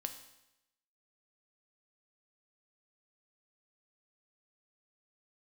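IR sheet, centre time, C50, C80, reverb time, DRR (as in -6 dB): 13 ms, 10.5 dB, 12.5 dB, 0.90 s, 6.5 dB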